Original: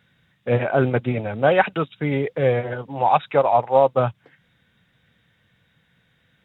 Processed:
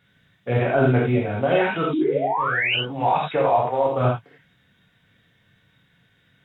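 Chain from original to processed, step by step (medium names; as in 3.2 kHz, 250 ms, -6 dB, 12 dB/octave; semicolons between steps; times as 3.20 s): painted sound rise, 1.93–2.75 s, 290–3100 Hz -11 dBFS; compressor with a negative ratio -17 dBFS, ratio -1; gated-style reverb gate 120 ms flat, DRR -3 dB; trim -6.5 dB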